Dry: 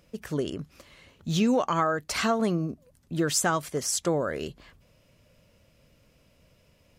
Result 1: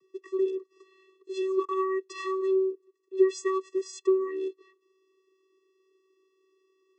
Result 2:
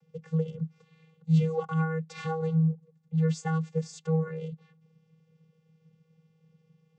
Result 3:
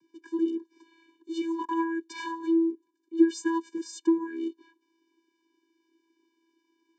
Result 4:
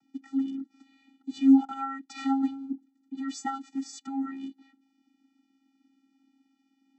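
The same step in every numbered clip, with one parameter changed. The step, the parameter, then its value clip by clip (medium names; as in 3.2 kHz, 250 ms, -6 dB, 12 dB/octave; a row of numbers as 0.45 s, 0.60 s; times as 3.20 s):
vocoder, frequency: 380 Hz, 160 Hz, 330 Hz, 270 Hz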